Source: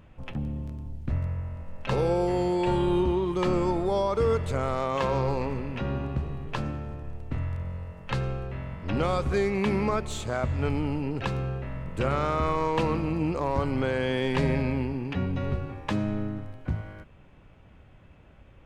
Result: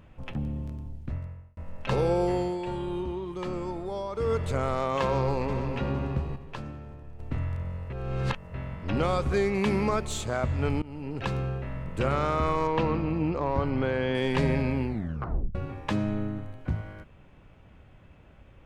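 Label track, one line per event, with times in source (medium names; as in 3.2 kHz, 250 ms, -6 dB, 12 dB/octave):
0.760000	1.570000	fade out
2.300000	4.440000	dip -8 dB, fades 0.31 s
5.020000	5.740000	echo throw 460 ms, feedback 35%, level -9.5 dB
6.360000	7.190000	gain -7 dB
7.900000	8.540000	reverse
9.540000	10.250000	tone controls bass 0 dB, treble +4 dB
10.820000	11.320000	fade in, from -20.5 dB
12.670000	14.150000	distance through air 140 m
14.850000	14.850000	tape stop 0.70 s
16.090000	16.580000	Butterworth band-stop 5.2 kHz, Q 7.9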